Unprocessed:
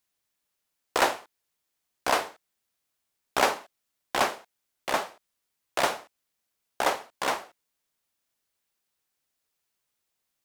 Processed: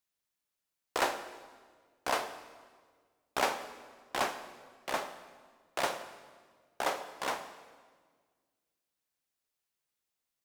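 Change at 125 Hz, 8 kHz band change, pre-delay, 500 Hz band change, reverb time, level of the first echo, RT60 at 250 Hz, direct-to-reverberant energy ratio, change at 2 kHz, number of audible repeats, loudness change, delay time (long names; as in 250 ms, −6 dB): −6.5 dB, −6.5 dB, 26 ms, −6.5 dB, 1.6 s, no echo audible, 2.0 s, 10.0 dB, −6.5 dB, no echo audible, −7.0 dB, no echo audible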